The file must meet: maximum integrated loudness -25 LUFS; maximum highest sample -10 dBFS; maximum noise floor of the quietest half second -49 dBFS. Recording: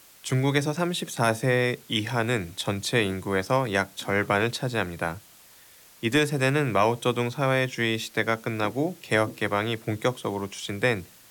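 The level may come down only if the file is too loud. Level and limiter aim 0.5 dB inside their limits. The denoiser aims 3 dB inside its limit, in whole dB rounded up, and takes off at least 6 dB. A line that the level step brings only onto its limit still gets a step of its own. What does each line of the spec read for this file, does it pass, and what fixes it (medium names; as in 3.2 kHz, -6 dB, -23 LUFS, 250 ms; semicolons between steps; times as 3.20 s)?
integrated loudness -26.0 LUFS: pass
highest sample -10.5 dBFS: pass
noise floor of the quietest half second -53 dBFS: pass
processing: none needed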